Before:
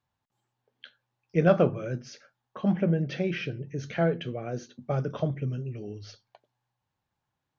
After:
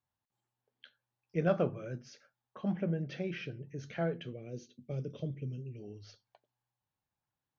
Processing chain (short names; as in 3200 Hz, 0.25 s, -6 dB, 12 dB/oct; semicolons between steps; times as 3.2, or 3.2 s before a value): 4.33–5.8 band shelf 1100 Hz -15.5 dB; gain -8.5 dB